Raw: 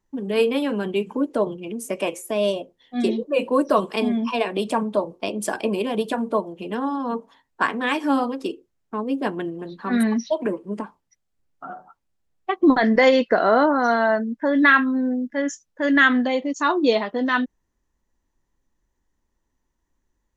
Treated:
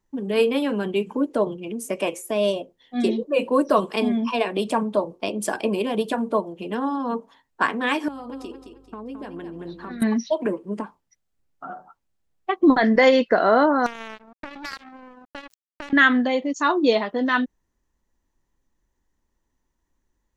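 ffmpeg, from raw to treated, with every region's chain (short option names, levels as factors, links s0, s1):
-filter_complex "[0:a]asettb=1/sr,asplit=3[s0][s1][s2];[s0]atrim=end=8.084[s3];[s1]atrim=start=8.08:end=10.02,asetpts=PTS-STARTPTS,afade=t=in:d=0.004:c=qsin,afade=t=out:st=1.936:d=0.004:c=qsin,acompressor=threshold=0.0282:ratio=16:attack=3.2:release=140:knee=1:detection=peak,aeval=exprs='val(0)+0.00141*(sin(2*PI*50*n/s)+sin(2*PI*2*50*n/s)/2+sin(2*PI*3*50*n/s)/3+sin(2*PI*4*50*n/s)/4+sin(2*PI*5*50*n/s)/5)':c=same,aecho=1:1:217|434|651|868:0.398|0.135|0.046|0.0156,atrim=end_sample=85554[s4];[s2]atrim=start=10.016[s5];[s3][s4]acrossfade=d=0.004:c1=hsin:c2=qsin[s6];[s6][s5]acrossfade=d=0.004:c1=qsin:c2=hsin,asettb=1/sr,asplit=3[s7][s8][s9];[s7]atrim=end=13.864[s10];[s8]atrim=start=13.86:end=15.93,asetpts=PTS-STARTPTS,afade=t=in:d=0.004:c=qsin,afade=t=out:st=2.066:d=0.004:c=qsin,acompressor=threshold=0.0447:ratio=8:attack=3.2:release=140:knee=1:detection=peak,lowshelf=f=68:g=-6.5,acrusher=bits=3:mix=0:aa=0.5[s11];[s9]atrim=start=15.926[s12];[s10][s11]acrossfade=d=0.004:c1=hsin:c2=qsin[s13];[s13][s12]acrossfade=d=0.004:c1=qsin:c2=hsin"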